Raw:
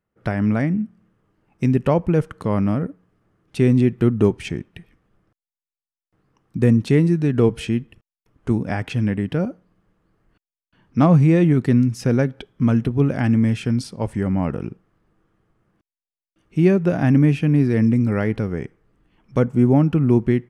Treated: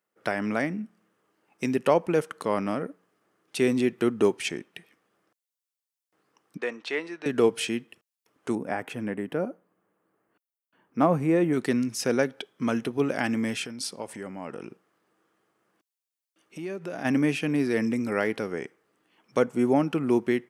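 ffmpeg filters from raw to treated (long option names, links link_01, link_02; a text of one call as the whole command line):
ffmpeg -i in.wav -filter_complex "[0:a]asettb=1/sr,asplit=3[link_01][link_02][link_03];[link_01]atrim=end=6.574[link_04];[link_02]atrim=start=6.57:end=7.26,asetpts=PTS-STARTPTS,afade=type=in:duration=0.004:curve=qsin,afade=type=out:start_time=0.686:duration=0.004:curve=qsin,highpass=660,lowpass=3300[link_05];[link_03]atrim=start=7.256[link_06];[link_04][link_05]acrossfade=duration=0.004:curve1=hsin:curve2=qsin[link_07];[link_07][link_06]acrossfade=duration=0.004:curve1=qsin:curve2=hsin,asettb=1/sr,asplit=3[link_08][link_09][link_10];[link_08]atrim=end=8.554[link_11];[link_09]atrim=start=8.55:end=11.53,asetpts=PTS-STARTPTS,afade=type=in:duration=0.004:curve=qsin,afade=type=out:start_time=2.976:duration=0.004:curve=qsin,equalizer=frequency=4700:width_type=o:width=1.9:gain=-15[link_12];[link_10]atrim=start=11.526[link_13];[link_11][link_12]acrossfade=duration=0.004:curve1=hsin:curve2=qsin[link_14];[link_14][link_13]acrossfade=duration=0.004:curve1=qsin:curve2=hsin,asplit=3[link_15][link_16][link_17];[link_15]afade=type=out:start_time=13.58:duration=0.02[link_18];[link_16]acompressor=threshold=-25dB:ratio=6:attack=3.2:release=140:knee=1:detection=peak,afade=type=in:start_time=13.58:duration=0.02,afade=type=out:start_time=17.04:duration=0.02[link_19];[link_17]afade=type=in:start_time=17.04:duration=0.02[link_20];[link_18][link_19][link_20]amix=inputs=3:normalize=0,highpass=360,highshelf=frequency=3700:gain=8,volume=-1dB" out.wav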